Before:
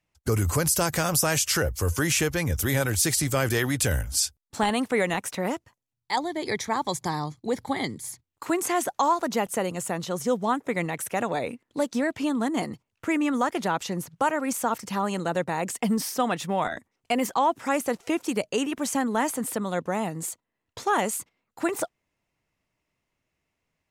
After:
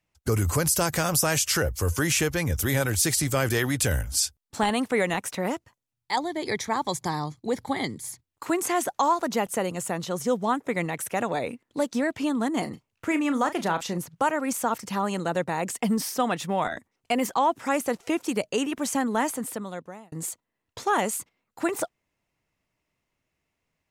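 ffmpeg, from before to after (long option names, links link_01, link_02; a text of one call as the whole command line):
ffmpeg -i in.wav -filter_complex "[0:a]asettb=1/sr,asplit=3[link_01][link_02][link_03];[link_01]atrim=end=12.624[link_04];[link_02]atrim=start=12.62:end=13.98,asetpts=PTS-STARTPTS,afade=type=in:duration=0.004:curve=qsin,afade=type=out:start_time=1.356:duration=0.004:curve=qsin,asplit=2[link_05][link_06];[link_06]adelay=35,volume=-11dB[link_07];[link_05][link_07]amix=inputs=2:normalize=0,atrim=end_sample=59976[link_08];[link_03]atrim=start=13.976[link_09];[link_04][link_08]acrossfade=duration=0.004:curve1=hsin:curve2=qsin[link_10];[link_10][link_09]acrossfade=duration=0.004:curve1=qsin:curve2=hsin,asplit=2[link_11][link_12];[link_11]atrim=end=20.12,asetpts=PTS-STARTPTS,afade=type=out:start_time=19.21:duration=0.91[link_13];[link_12]atrim=start=20.12,asetpts=PTS-STARTPTS,afade=type=in:duration=0.004:curve=hsin[link_14];[link_13][link_14]concat=n=2:v=0:a=1" out.wav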